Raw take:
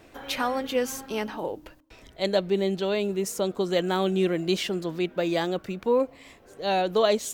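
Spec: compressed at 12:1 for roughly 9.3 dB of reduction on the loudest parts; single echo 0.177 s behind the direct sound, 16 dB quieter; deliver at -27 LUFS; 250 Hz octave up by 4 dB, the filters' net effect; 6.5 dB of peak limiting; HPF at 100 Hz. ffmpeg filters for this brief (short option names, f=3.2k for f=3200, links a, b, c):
-af "highpass=100,equalizer=f=250:t=o:g=6.5,acompressor=threshold=-25dB:ratio=12,alimiter=limit=-21.5dB:level=0:latency=1,aecho=1:1:177:0.158,volume=5dB"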